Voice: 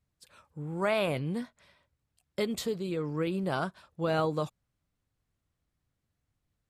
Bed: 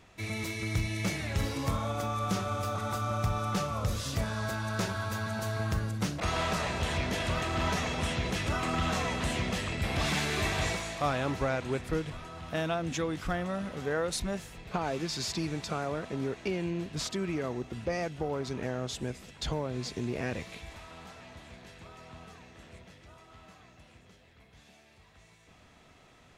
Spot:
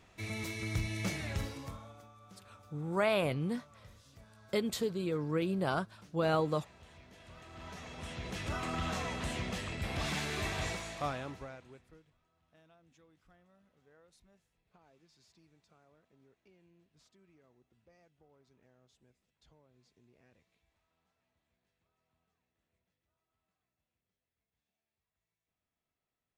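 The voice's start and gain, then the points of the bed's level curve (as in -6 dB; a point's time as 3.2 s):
2.15 s, -1.5 dB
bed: 1.31 s -4 dB
2.15 s -26 dB
7.11 s -26 dB
8.52 s -6 dB
11.05 s -6 dB
12.14 s -33.5 dB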